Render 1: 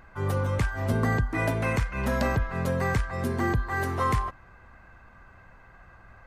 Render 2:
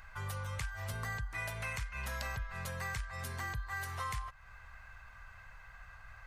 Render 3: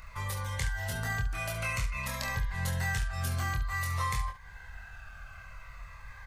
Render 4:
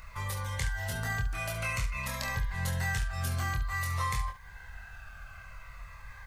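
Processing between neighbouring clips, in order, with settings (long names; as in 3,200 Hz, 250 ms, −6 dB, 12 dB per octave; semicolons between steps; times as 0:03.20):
guitar amp tone stack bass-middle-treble 10-0-10; downward compressor 2.5 to 1, threshold −47 dBFS, peak gain reduction 12 dB; level +6 dB
on a send: ambience of single reflections 24 ms −3.5 dB, 70 ms −10 dB; on the sum: phaser whose notches keep moving one way falling 0.52 Hz; level +6 dB
bit-depth reduction 12 bits, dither triangular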